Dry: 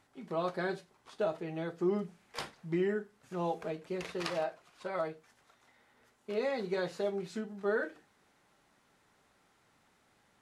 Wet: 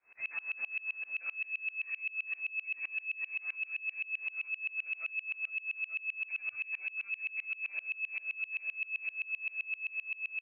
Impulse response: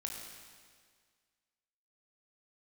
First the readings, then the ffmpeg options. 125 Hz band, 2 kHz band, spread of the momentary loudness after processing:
below −35 dB, +11.0 dB, 1 LU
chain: -filter_complex "[0:a]flanger=delay=17:depth=4.4:speed=1.2,aresample=8000,aeval=exprs='abs(val(0))':channel_layout=same,aresample=44100,asubboost=boost=10:cutoff=230,asplit=2[link_01][link_02];[link_02]aeval=exprs='0.335*sin(PI/2*7.08*val(0)/0.335)':channel_layout=same,volume=-9dB[link_03];[link_01][link_03]amix=inputs=2:normalize=0,asplit=2[link_04][link_05];[link_05]adelay=14,volume=-2dB[link_06];[link_04][link_06]amix=inputs=2:normalize=0,aecho=1:1:445|890|1335|1780|2225|2670:0.188|0.107|0.0612|0.0349|0.0199|0.0113,lowpass=frequency=2200:width_type=q:width=0.5098,lowpass=frequency=2200:width_type=q:width=0.6013,lowpass=frequency=2200:width_type=q:width=0.9,lowpass=frequency=2200:width_type=q:width=2.563,afreqshift=-2600,acompressor=threshold=-31dB:ratio=2.5,alimiter=level_in=4dB:limit=-24dB:level=0:latency=1:release=15,volume=-4dB,aeval=exprs='val(0)*pow(10,-28*if(lt(mod(-7.7*n/s,1),2*abs(-7.7)/1000),1-mod(-7.7*n/s,1)/(2*abs(-7.7)/1000),(mod(-7.7*n/s,1)-2*abs(-7.7)/1000)/(1-2*abs(-7.7)/1000))/20)':channel_layout=same,volume=1.5dB"

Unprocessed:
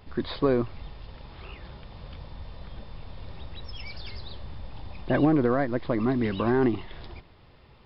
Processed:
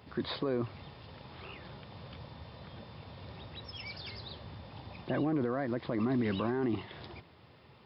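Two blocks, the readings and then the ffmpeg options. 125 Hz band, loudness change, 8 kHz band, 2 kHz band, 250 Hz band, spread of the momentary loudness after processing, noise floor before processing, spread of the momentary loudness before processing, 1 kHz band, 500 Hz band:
−7.0 dB, −9.5 dB, can't be measured, −7.0 dB, −7.5 dB, 18 LU, −54 dBFS, 21 LU, −8.0 dB, −8.5 dB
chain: -af "highpass=frequency=89:width=0.5412,highpass=frequency=89:width=1.3066,alimiter=limit=-22dB:level=0:latency=1:release=33,volume=-1.5dB"

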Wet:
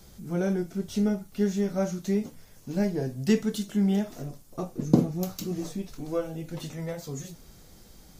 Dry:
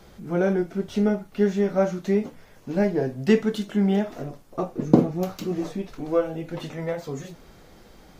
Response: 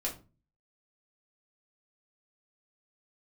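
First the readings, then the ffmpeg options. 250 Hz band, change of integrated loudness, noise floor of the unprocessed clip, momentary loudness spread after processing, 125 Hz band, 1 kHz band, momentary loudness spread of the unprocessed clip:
−3.0 dB, −4.5 dB, −51 dBFS, 13 LU, −1.5 dB, −8.0 dB, 13 LU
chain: -af "bass=frequency=250:gain=8,treble=frequency=4000:gain=15,volume=-8dB"

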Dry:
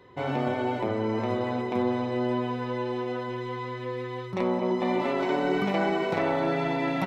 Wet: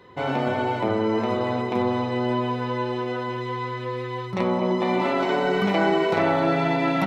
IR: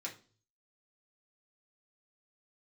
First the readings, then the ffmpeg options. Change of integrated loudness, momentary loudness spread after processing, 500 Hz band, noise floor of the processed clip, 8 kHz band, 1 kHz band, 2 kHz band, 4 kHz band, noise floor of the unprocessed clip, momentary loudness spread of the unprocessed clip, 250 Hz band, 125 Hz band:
+4.0 dB, 8 LU, +4.0 dB, −31 dBFS, can't be measured, +5.0 dB, +5.5 dB, +6.0 dB, −36 dBFS, 8 LU, +3.5 dB, +4.5 dB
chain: -filter_complex "[0:a]asplit=2[link_01][link_02];[1:a]atrim=start_sample=2205,asetrate=25137,aresample=44100[link_03];[link_02][link_03]afir=irnorm=-1:irlink=0,volume=-9dB[link_04];[link_01][link_04]amix=inputs=2:normalize=0,volume=2.5dB"

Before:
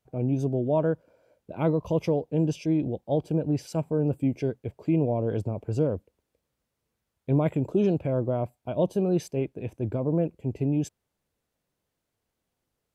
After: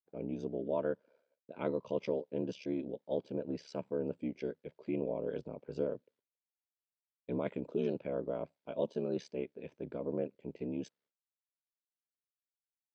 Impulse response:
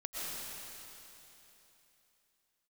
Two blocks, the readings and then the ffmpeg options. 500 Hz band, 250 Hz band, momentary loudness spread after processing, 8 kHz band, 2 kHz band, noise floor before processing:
−8.5 dB, −12.0 dB, 8 LU, can't be measured, −7.0 dB, −83 dBFS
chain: -af "agate=range=-33dB:threshold=-54dB:ratio=3:detection=peak,aeval=exprs='val(0)*sin(2*PI*35*n/s)':channel_layout=same,highpass=300,equalizer=frequency=330:width_type=q:width=4:gain=-5,equalizer=frequency=750:width_type=q:width=4:gain=-10,equalizer=frequency=1100:width_type=q:width=4:gain=-4,equalizer=frequency=2700:width_type=q:width=4:gain=-3,lowpass=frequency=4900:width=0.5412,lowpass=frequency=4900:width=1.3066,volume=-2.5dB"

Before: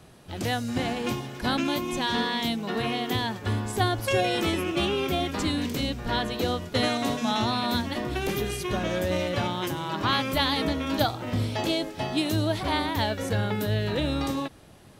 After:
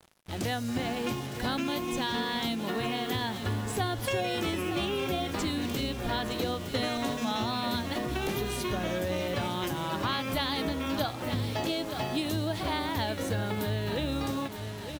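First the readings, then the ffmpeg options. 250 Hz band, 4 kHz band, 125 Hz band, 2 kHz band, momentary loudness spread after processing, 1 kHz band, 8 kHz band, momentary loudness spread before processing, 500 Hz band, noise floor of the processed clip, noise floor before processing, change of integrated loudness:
−4.0 dB, −4.5 dB, −4.0 dB, −4.0 dB, 2 LU, −4.0 dB, −2.0 dB, 5 LU, −4.0 dB, −38 dBFS, −50 dBFS, −4.0 dB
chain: -af "aecho=1:1:913|1826|2739|3652:0.224|0.094|0.0395|0.0166,acrusher=bits=6:mix=0:aa=0.5,acompressor=threshold=-29dB:ratio=2.5"

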